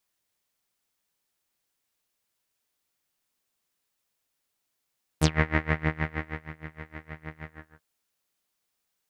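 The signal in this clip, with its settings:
subtractive patch with tremolo D#3, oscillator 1 saw, sub −6.5 dB, filter lowpass, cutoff 1,600 Hz, Q 6.1, filter envelope 3 octaves, filter decay 0.09 s, filter sustain 10%, attack 8.3 ms, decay 1.28 s, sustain −19 dB, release 0.37 s, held 2.23 s, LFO 6.4 Hz, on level 24 dB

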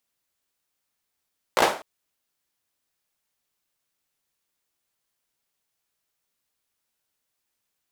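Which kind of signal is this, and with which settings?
synth clap length 0.25 s, apart 17 ms, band 680 Hz, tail 0.38 s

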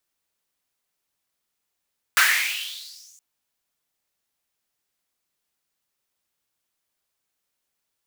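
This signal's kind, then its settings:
filter sweep on noise pink, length 1.02 s highpass, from 1,500 Hz, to 7,000 Hz, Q 5.8, exponential, gain ramp −38 dB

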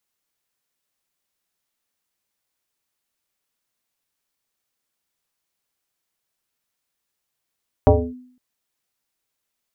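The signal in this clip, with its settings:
two-operator FM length 0.51 s, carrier 251 Hz, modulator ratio 0.7, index 3, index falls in 0.27 s linear, decay 0.58 s, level −6 dB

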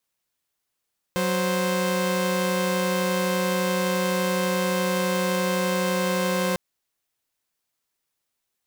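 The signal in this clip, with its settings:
held notes F#3/C5 saw, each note −22 dBFS 5.40 s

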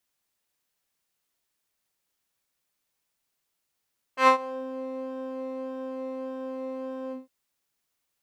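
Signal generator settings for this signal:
subtractive patch with pulse-width modulation C5, oscillator 2 level −15 dB, sub −3.5 dB, filter bandpass, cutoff 110 Hz, Q 1.6, filter envelope 4 octaves, filter decay 0.46 s, filter sustain 45%, attack 103 ms, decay 0.10 s, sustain −22 dB, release 0.16 s, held 2.95 s, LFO 1.7 Hz, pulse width 28%, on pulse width 4%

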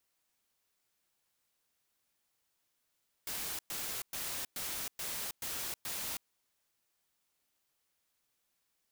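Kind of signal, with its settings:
noise bursts white, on 0.32 s, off 0.11 s, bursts 7, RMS −39 dBFS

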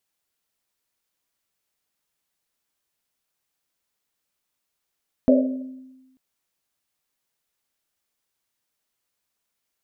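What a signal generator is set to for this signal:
drum after Risset length 0.89 s, pitch 260 Hz, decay 1.19 s, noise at 570 Hz, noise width 110 Hz, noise 35%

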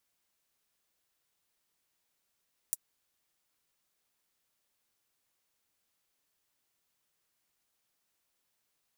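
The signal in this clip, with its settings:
closed synth hi-hat, high-pass 8,100 Hz, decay 0.04 s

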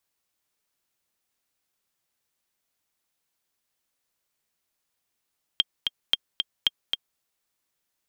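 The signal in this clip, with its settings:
click track 225 BPM, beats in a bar 2, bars 3, 3,200 Hz, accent 5 dB −6.5 dBFS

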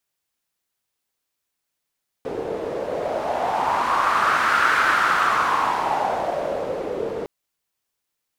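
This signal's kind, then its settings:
wind from filtered noise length 5.01 s, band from 450 Hz, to 1,400 Hz, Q 4.3, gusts 1, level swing 9 dB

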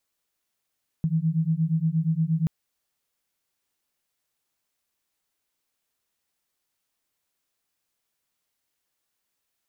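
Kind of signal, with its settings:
two tones that beat 157 Hz, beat 8.5 Hz, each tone −24 dBFS 1.43 s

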